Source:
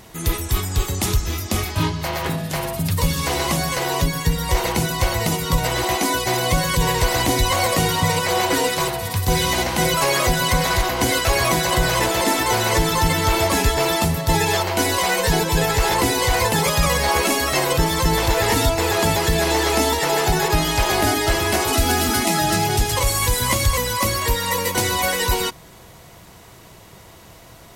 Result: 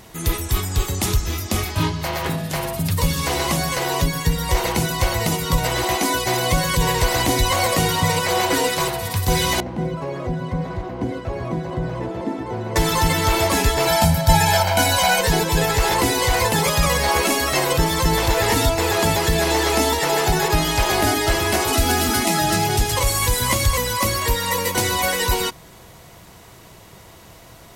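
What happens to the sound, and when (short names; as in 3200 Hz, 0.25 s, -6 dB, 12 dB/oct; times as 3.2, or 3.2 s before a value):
9.6–12.76 band-pass 190 Hz, Q 0.78
13.87–15.21 comb 1.3 ms, depth 92%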